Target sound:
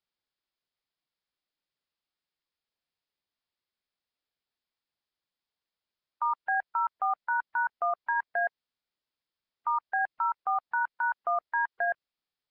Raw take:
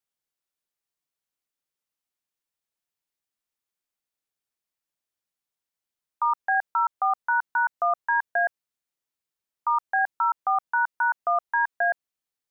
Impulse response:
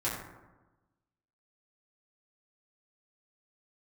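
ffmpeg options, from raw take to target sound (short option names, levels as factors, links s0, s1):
-af "alimiter=limit=0.0944:level=0:latency=1:release=104" -ar 11025 -c:a nellymoser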